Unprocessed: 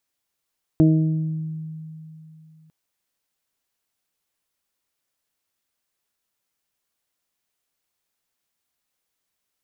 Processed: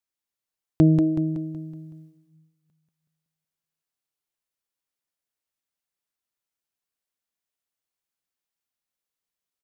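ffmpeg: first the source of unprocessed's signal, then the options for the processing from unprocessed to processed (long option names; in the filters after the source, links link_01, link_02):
-f lavfi -i "aevalsrc='0.211*pow(10,-3*t/3.07)*sin(2*PI*158*t)+0.251*pow(10,-3*t/1.05)*sin(2*PI*316*t)+0.0316*pow(10,-3*t/0.9)*sin(2*PI*474*t)+0.0398*pow(10,-3*t/0.79)*sin(2*PI*632*t)':duration=1.9:sample_rate=44100"
-af "agate=range=-11dB:threshold=-42dB:ratio=16:detection=peak,aecho=1:1:187|374|561|748|935|1122:0.501|0.241|0.115|0.0554|0.0266|0.0128"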